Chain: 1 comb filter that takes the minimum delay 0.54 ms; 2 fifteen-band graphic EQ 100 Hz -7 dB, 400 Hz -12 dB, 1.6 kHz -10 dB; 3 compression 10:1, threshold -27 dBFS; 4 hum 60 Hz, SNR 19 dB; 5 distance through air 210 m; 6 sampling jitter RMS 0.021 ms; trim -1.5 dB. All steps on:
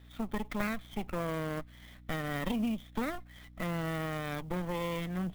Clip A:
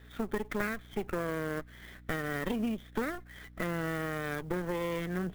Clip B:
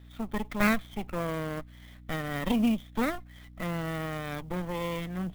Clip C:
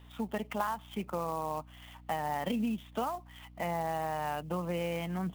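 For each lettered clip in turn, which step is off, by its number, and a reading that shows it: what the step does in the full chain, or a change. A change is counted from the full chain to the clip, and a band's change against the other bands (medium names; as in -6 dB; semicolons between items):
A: 2, 2 kHz band +3.5 dB; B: 3, mean gain reduction 2.0 dB; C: 1, 1 kHz band +7.5 dB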